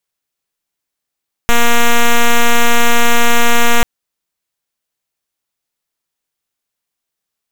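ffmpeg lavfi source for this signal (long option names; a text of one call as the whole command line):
ffmpeg -f lavfi -i "aevalsrc='0.447*(2*lt(mod(236*t,1),0.05)-1)':duration=2.34:sample_rate=44100" out.wav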